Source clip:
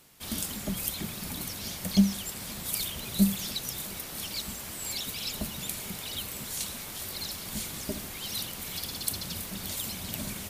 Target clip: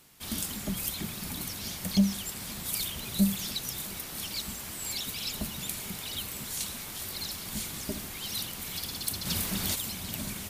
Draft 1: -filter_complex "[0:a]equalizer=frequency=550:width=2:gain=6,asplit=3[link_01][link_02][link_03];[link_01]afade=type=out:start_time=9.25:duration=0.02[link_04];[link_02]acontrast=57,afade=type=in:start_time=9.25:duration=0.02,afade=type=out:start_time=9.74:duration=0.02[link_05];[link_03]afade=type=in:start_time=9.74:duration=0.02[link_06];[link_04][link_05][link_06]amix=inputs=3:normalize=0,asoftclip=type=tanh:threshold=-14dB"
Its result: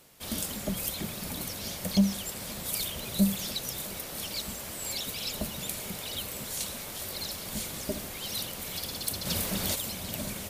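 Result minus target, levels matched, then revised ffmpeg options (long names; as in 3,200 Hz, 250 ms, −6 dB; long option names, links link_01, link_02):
500 Hz band +5.5 dB
-filter_complex "[0:a]equalizer=frequency=550:width=2:gain=-3,asplit=3[link_01][link_02][link_03];[link_01]afade=type=out:start_time=9.25:duration=0.02[link_04];[link_02]acontrast=57,afade=type=in:start_time=9.25:duration=0.02,afade=type=out:start_time=9.74:duration=0.02[link_05];[link_03]afade=type=in:start_time=9.74:duration=0.02[link_06];[link_04][link_05][link_06]amix=inputs=3:normalize=0,asoftclip=type=tanh:threshold=-14dB"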